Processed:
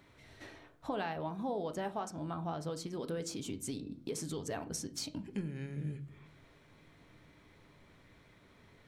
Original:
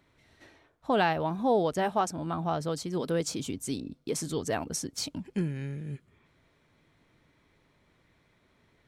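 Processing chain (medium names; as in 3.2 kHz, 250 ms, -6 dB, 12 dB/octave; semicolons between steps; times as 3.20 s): compression 3:1, threshold -45 dBFS, peak gain reduction 17.5 dB; on a send: reverberation RT60 0.50 s, pre-delay 7 ms, DRR 9 dB; on the sum: trim +4 dB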